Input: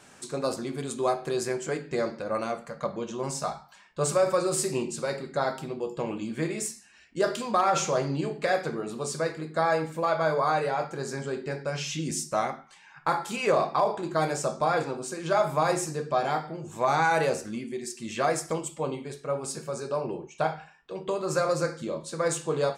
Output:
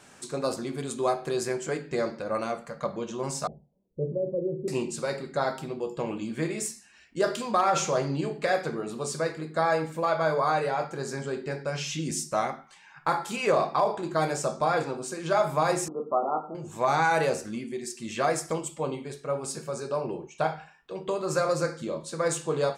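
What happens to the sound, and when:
3.47–4.68 elliptic low-pass 500 Hz, stop band 70 dB
15.88–16.55 brick-wall FIR band-pass 170–1400 Hz

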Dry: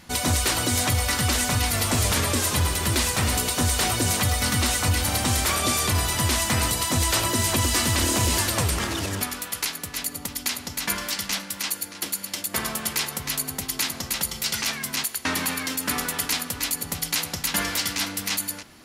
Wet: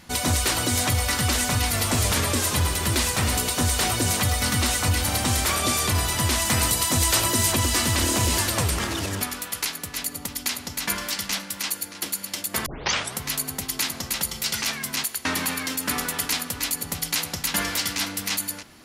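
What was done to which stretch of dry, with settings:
6.45–7.52 high shelf 5400 Hz +4.5 dB
12.66 tape start 0.52 s

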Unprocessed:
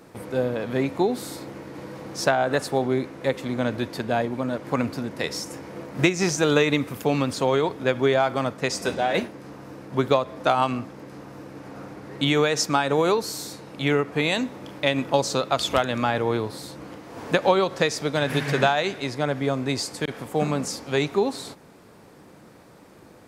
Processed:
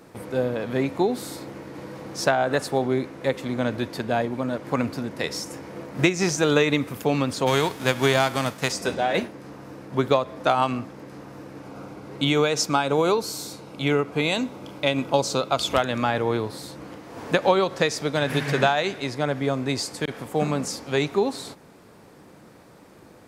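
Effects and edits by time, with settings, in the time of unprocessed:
7.46–8.71 spectral whitening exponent 0.6
11.62–15.7 notch 1800 Hz, Q 5.6

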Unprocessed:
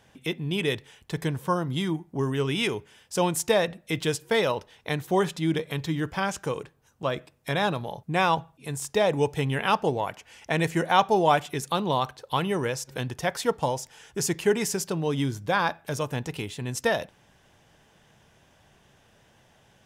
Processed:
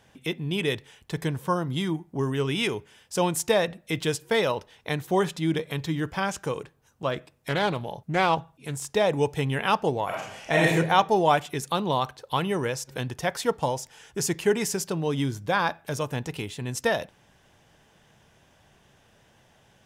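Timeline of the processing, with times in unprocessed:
7.11–8.96 Doppler distortion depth 0.22 ms
10.05–10.72 reverb throw, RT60 0.81 s, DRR -4.5 dB

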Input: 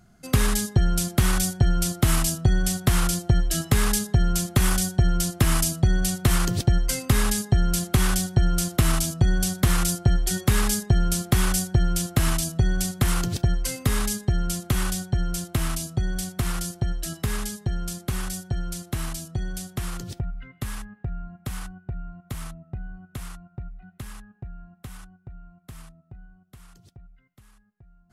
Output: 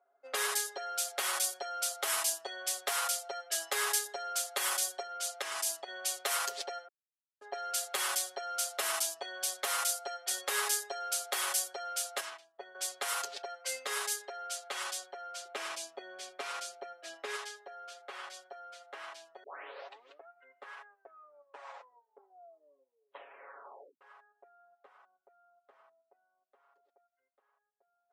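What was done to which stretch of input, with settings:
5.02–5.88 compressor 4:1, threshold -20 dBFS
6.88–7.41 mute
12.2–12.75 upward expander 2.5:1, over -29 dBFS
15.45–17.36 small resonant body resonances 220/330/2400 Hz, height 7 dB, ringing for 20 ms
19.43 tape start 0.85 s
20.84 tape stop 3.17 s
whole clip: steep high-pass 470 Hz 36 dB/oct; comb 7.2 ms, depth 96%; low-pass opened by the level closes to 820 Hz, open at -23 dBFS; gain -7.5 dB

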